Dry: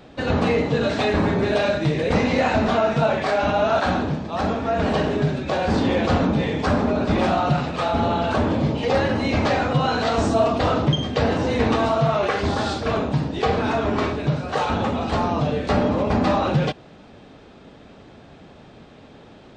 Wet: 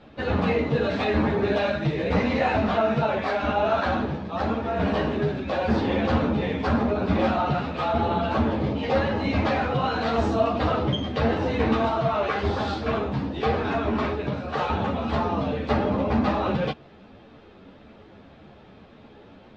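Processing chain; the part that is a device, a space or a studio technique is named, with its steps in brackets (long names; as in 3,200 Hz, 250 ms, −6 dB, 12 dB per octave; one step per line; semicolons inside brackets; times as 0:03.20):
string-machine ensemble chorus (string-ensemble chorus; low-pass filter 4,000 Hz 12 dB per octave)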